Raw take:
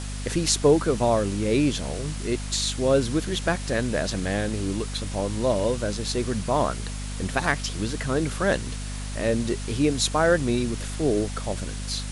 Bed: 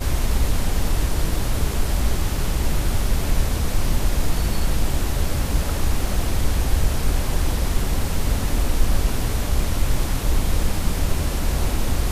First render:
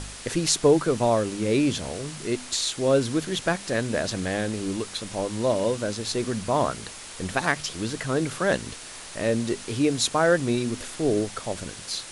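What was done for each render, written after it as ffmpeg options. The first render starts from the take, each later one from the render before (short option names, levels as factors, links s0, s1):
-af "bandreject=f=50:t=h:w=4,bandreject=f=100:t=h:w=4,bandreject=f=150:t=h:w=4,bandreject=f=200:t=h:w=4,bandreject=f=250:t=h:w=4"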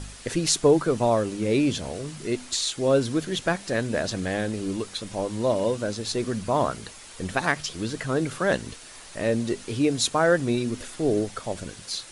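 -af "afftdn=nr=6:nf=-41"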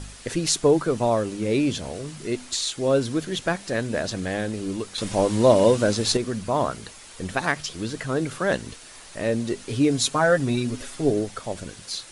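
-filter_complex "[0:a]asettb=1/sr,asplit=3[s0][s1][s2];[s0]atrim=end=9.684[s3];[s1]atrim=start=9.68:end=11.11,asetpts=PTS-STARTPTS,afade=t=in:d=0.004:c=qsin,afade=t=out:st=1.426:d=0.004:c=qsin,aecho=1:1:7.3:0.6,atrim=end_sample=63063[s4];[s2]atrim=start=11.106[s5];[s3][s4]acrossfade=d=0.004:c1=hsin:c2=qsin[s6];[s6][s5]acrossfade=d=0.004:c1=qsin:c2=hsin,asplit=3[s7][s8][s9];[s7]atrim=end=4.982[s10];[s8]atrim=start=4.978:end=6.172,asetpts=PTS-STARTPTS,volume=2.37[s11];[s9]atrim=start=6.168[s12];[s10][s11]acrossfade=d=0.004:c1=hsin:c2=hsin[s13];[s13][s12]acrossfade=d=0.004:c1=hsin:c2=hsin"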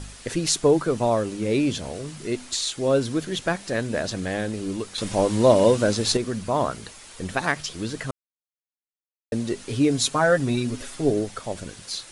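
-filter_complex "[0:a]asplit=3[s0][s1][s2];[s0]atrim=end=8.11,asetpts=PTS-STARTPTS,afade=t=out:st=8.106:d=0.004:c=hsin[s3];[s1]atrim=start=8.11:end=9.32,asetpts=PTS-STARTPTS,volume=0[s4];[s2]atrim=start=9.32,asetpts=PTS-STARTPTS,afade=t=in:d=0.004:c=hsin[s5];[s3][s4][s5]concat=n=3:v=0:a=1"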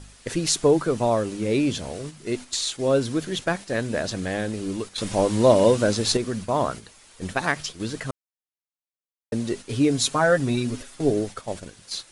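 -af "agate=range=0.447:threshold=0.0224:ratio=16:detection=peak"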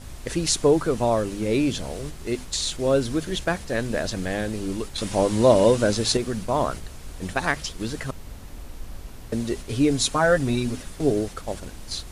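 -filter_complex "[1:a]volume=0.119[s0];[0:a][s0]amix=inputs=2:normalize=0"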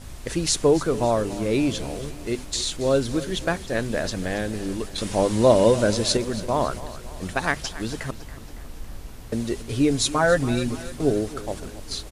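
-af "aecho=1:1:279|558|837|1116|1395:0.158|0.084|0.0445|0.0236|0.0125"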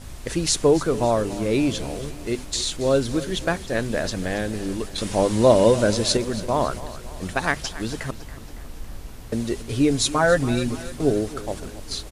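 -af "volume=1.12"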